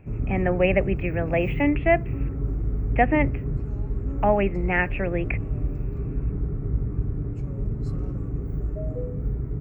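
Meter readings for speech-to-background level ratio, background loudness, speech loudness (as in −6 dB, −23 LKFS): 5.0 dB, −29.5 LKFS, −24.5 LKFS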